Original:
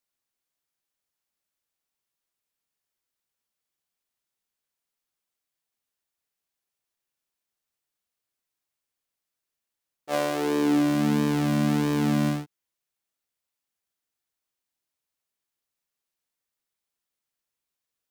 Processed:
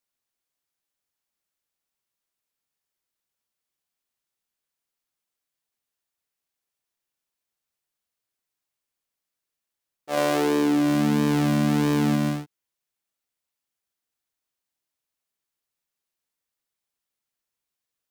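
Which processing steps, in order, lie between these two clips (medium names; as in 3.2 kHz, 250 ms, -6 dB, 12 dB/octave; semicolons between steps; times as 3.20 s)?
10.17–12.16 s: level flattener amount 70%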